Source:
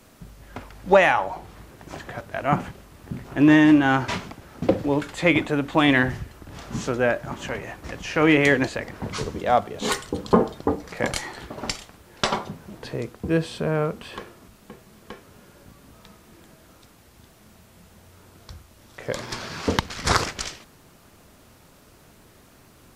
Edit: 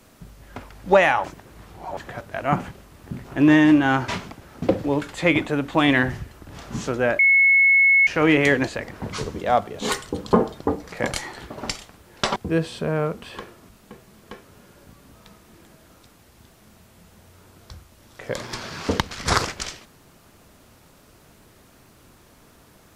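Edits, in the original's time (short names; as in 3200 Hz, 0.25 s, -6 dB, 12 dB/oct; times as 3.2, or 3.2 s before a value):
1.24–1.97 reverse
7.19–8.07 bleep 2190 Hz -12 dBFS
12.36–13.15 cut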